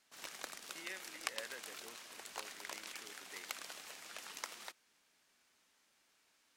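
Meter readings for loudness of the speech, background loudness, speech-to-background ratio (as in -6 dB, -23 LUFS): -53.5 LUFS, -47.0 LUFS, -6.5 dB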